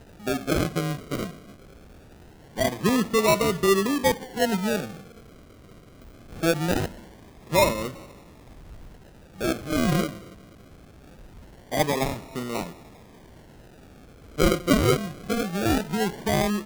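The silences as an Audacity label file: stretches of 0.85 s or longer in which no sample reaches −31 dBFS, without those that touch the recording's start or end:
1.300000	2.570000	silence
4.890000	6.430000	silence
7.900000	9.410000	silence
10.100000	11.720000	silence
12.670000	14.390000	silence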